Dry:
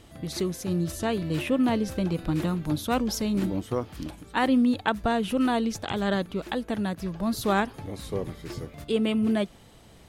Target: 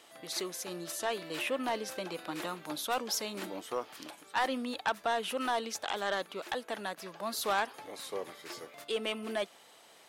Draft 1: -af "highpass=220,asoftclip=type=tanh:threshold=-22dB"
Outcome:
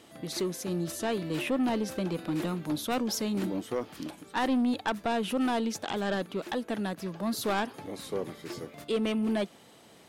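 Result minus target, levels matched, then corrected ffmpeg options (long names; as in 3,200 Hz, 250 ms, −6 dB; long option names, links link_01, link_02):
250 Hz band +8.0 dB
-af "highpass=620,asoftclip=type=tanh:threshold=-22dB"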